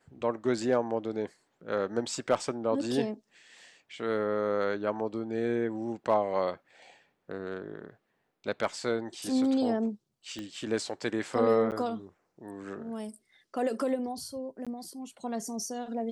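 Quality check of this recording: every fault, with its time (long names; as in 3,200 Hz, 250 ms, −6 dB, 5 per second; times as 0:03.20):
0:10.39: click −25 dBFS
0:11.71–0:11.72: drop-out 8.4 ms
0:14.65–0:14.67: drop-out 16 ms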